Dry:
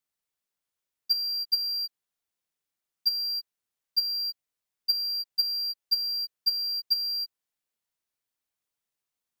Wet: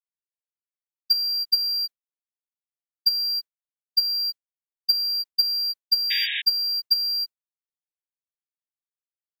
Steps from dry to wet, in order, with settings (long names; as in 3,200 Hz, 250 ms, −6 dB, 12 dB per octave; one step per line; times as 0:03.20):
hollow resonant body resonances 1,500/2,300 Hz, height 6 dB, ringing for 95 ms
sound drawn into the spectrogram noise, 0:06.10–0:06.42, 1,600–3,800 Hz −32 dBFS
downward expander −31 dBFS
level +5 dB